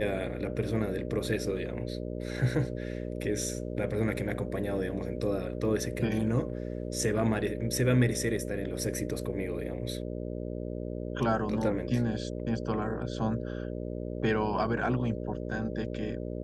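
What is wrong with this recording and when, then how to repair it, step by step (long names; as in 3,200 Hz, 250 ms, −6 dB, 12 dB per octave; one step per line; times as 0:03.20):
mains buzz 60 Hz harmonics 10 −36 dBFS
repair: hum removal 60 Hz, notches 10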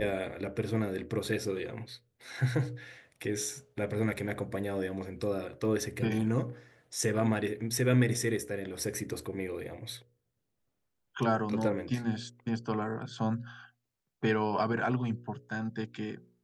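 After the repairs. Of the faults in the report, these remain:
none of them is left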